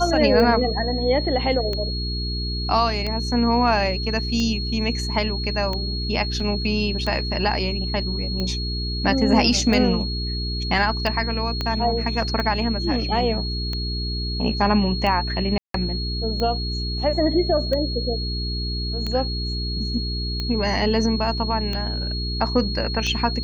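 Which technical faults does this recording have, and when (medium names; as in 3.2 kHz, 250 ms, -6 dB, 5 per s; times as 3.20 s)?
hum 60 Hz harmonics 7 -27 dBFS
tick 45 rpm -14 dBFS
whine 4.3 kHz -29 dBFS
6.40 s: dropout 3.9 ms
11.61 s: pop -12 dBFS
15.58–15.74 s: dropout 163 ms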